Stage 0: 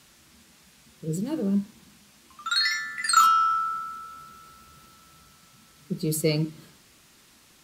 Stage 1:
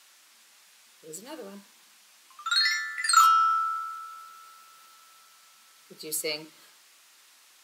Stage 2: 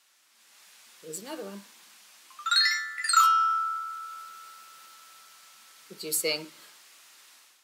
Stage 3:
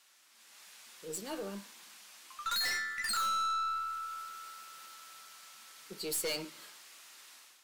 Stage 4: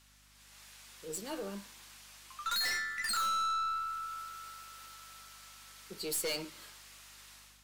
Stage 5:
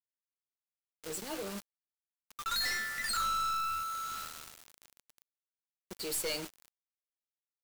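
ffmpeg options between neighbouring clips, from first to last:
-af "highpass=770"
-af "dynaudnorm=f=320:g=3:m=3.55,volume=0.398"
-af "aeval=exprs='(tanh(35.5*val(0)+0.15)-tanh(0.15))/35.5':c=same"
-af "aeval=exprs='val(0)+0.000501*(sin(2*PI*50*n/s)+sin(2*PI*2*50*n/s)/2+sin(2*PI*3*50*n/s)/3+sin(2*PI*4*50*n/s)/4+sin(2*PI*5*50*n/s)/5)':c=same"
-af "acrusher=bits=6:mix=0:aa=0.000001"

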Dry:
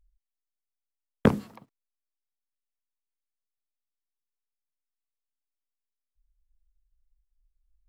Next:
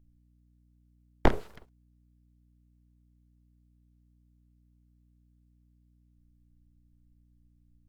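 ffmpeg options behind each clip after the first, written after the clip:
-filter_complex "[0:a]acrossover=split=3600[s0][s1];[s1]acompressor=threshold=0.00126:ratio=4:attack=1:release=60[s2];[s0][s2]amix=inputs=2:normalize=0,aeval=exprs='abs(val(0))':c=same,aeval=exprs='val(0)+0.000708*(sin(2*PI*60*n/s)+sin(2*PI*2*60*n/s)/2+sin(2*PI*3*60*n/s)/3+sin(2*PI*4*60*n/s)/4+sin(2*PI*5*60*n/s)/5)':c=same"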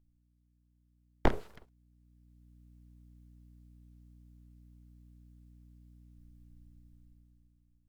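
-af "dynaudnorm=f=220:g=9:m=5.62,volume=0.422"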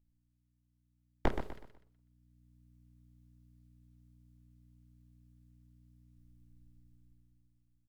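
-af "aecho=1:1:124|248|372|496:0.376|0.128|0.0434|0.0148,volume=0.596"

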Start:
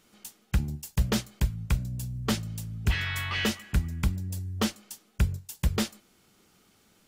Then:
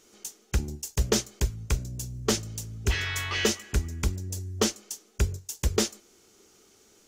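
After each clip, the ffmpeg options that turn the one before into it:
-af "equalizer=f=160:t=o:w=0.67:g=-8,equalizer=f=400:t=o:w=0.67:g=10,equalizer=f=6300:t=o:w=0.67:g=11"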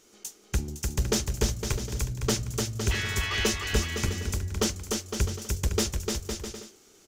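-af "aeval=exprs='(tanh(6.31*val(0)+0.2)-tanh(0.2))/6.31':c=same,aecho=1:1:300|510|657|759.9|831.9:0.631|0.398|0.251|0.158|0.1"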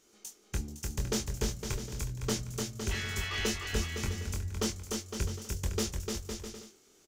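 -filter_complex "[0:a]asplit=2[s0][s1];[s1]adelay=23,volume=0.531[s2];[s0][s2]amix=inputs=2:normalize=0,volume=0.447"

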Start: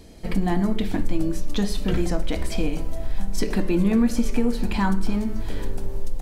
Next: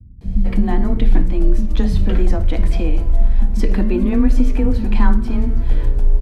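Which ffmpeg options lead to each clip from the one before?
-filter_complex "[0:a]afreqshift=16,bass=f=250:g=7,treble=f=4000:g=-10,acrossover=split=200[s0][s1];[s1]adelay=210[s2];[s0][s2]amix=inputs=2:normalize=0,volume=1.19"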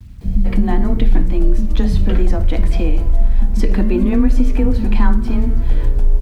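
-filter_complex "[0:a]asplit=2[s0][s1];[s1]acompressor=threshold=0.141:ratio=12,volume=1.26[s2];[s0][s2]amix=inputs=2:normalize=0,acrusher=bits=8:mix=0:aa=0.000001,volume=0.75"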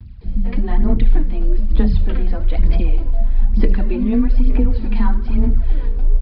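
-af "aphaser=in_gain=1:out_gain=1:delay=4.4:decay=0.58:speed=1.1:type=sinusoidal,aresample=11025,aresample=44100,volume=0.473"

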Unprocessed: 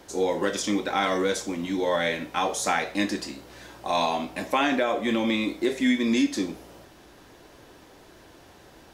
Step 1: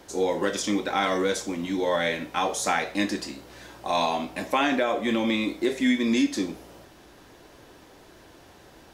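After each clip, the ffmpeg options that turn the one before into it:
-af anull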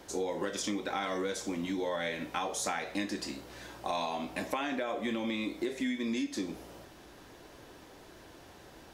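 -af "acompressor=threshold=0.0355:ratio=5,volume=0.794"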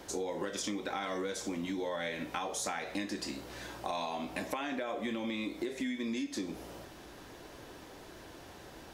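-af "acompressor=threshold=0.0112:ratio=2,volume=1.33"

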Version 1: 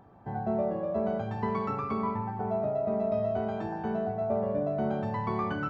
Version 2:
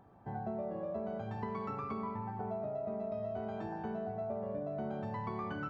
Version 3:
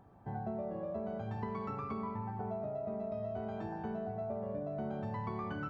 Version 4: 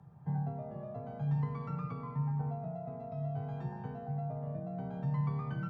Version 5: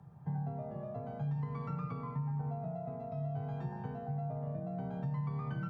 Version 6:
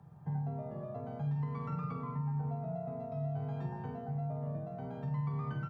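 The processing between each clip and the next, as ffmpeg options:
-af "acompressor=threshold=0.0316:ratio=6,volume=0.562"
-af "lowshelf=f=130:g=5.5,volume=0.891"
-af "afreqshift=35,lowshelf=f=200:t=q:w=3:g=8.5,volume=0.631"
-af "acompressor=threshold=0.02:ratio=6,volume=1.12"
-filter_complex "[0:a]bandreject=f=60:t=h:w=6,bandreject=f=120:t=h:w=6,bandreject=f=180:t=h:w=6,asplit=2[s0][s1];[s1]adelay=47,volume=0.376[s2];[s0][s2]amix=inputs=2:normalize=0"

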